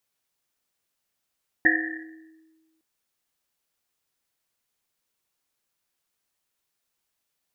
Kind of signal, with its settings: Risset drum length 1.16 s, pitch 320 Hz, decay 1.50 s, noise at 1800 Hz, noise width 230 Hz, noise 65%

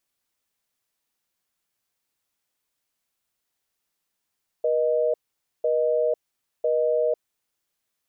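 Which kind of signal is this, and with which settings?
call progress tone busy tone, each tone -22 dBFS 2.55 s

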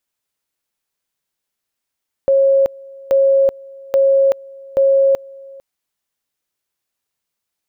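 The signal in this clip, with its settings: two-level tone 545 Hz -9 dBFS, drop 24.5 dB, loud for 0.38 s, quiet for 0.45 s, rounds 4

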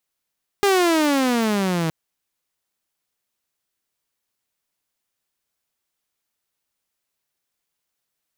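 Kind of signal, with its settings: gliding synth tone saw, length 1.27 s, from 409 Hz, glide -16.5 st, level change -6 dB, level -11.5 dB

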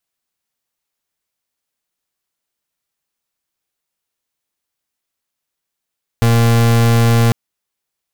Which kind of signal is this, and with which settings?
pulse 116 Hz, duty 37% -11 dBFS 1.10 s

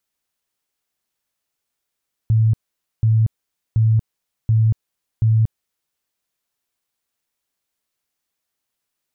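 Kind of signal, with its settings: tone bursts 111 Hz, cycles 26, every 0.73 s, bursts 5, -11.5 dBFS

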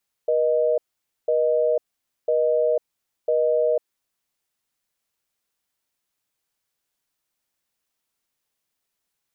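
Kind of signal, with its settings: call progress tone busy tone, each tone -20 dBFS 3.67 s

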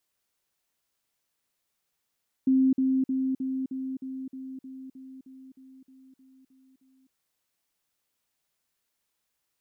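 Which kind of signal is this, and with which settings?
level ladder 263 Hz -18 dBFS, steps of -3 dB, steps 15, 0.26 s 0.05 s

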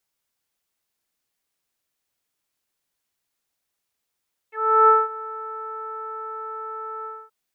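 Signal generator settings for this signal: synth note saw A4 24 dB/oct, low-pass 1300 Hz, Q 7, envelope 1 oct, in 0.06 s, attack 0.36 s, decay 0.20 s, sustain -20 dB, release 0.25 s, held 2.53 s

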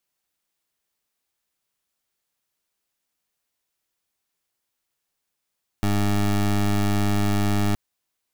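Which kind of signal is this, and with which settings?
pulse 102 Hz, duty 20% -20.5 dBFS 1.92 s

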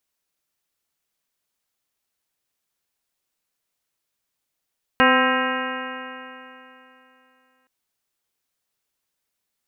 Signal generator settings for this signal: stretched partials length 2.67 s, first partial 255 Hz, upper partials 0/-2.5/0.5/-0.5/1/-1/-9.5/-6.5/-5 dB, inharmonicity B 0.0023, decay 3.01 s, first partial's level -19.5 dB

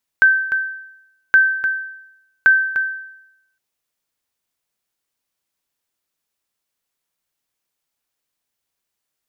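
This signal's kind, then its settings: sonar ping 1550 Hz, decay 0.84 s, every 1.12 s, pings 3, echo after 0.30 s, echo -10 dB -5 dBFS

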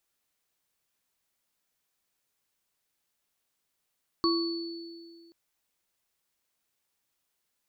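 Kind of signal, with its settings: sine partials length 1.08 s, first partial 335 Hz, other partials 1120/4450 Hz, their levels -3/-4.5 dB, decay 2.08 s, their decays 0.53/1.81 s, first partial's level -23 dB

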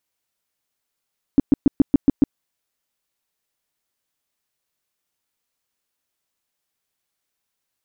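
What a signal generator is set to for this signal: tone bursts 280 Hz, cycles 5, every 0.14 s, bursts 7, -8 dBFS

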